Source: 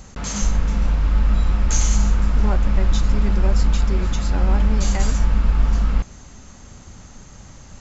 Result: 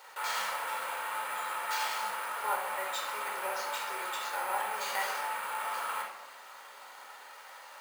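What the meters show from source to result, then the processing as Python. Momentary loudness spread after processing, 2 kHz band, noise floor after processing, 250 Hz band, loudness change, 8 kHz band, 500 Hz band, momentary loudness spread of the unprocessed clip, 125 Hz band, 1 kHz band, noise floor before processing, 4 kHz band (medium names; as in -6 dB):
16 LU, +0.5 dB, -51 dBFS, -33.0 dB, -13.5 dB, no reading, -8.5 dB, 3 LU, under -40 dB, +1.5 dB, -43 dBFS, -4.0 dB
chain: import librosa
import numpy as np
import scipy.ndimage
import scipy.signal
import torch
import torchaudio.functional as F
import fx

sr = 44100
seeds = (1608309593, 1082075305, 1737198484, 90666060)

y = fx.lowpass(x, sr, hz=3300.0, slope=6)
y = np.repeat(scipy.signal.resample_poly(y, 1, 4), 4)[:len(y)]
y = scipy.signal.sosfilt(scipy.signal.butter(4, 710.0, 'highpass', fs=sr, output='sos'), y)
y = fx.rider(y, sr, range_db=10, speed_s=2.0)
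y = fx.room_shoebox(y, sr, seeds[0], volume_m3=2200.0, walls='furnished', distance_m=4.5)
y = y * 10.0 ** (-2.5 / 20.0)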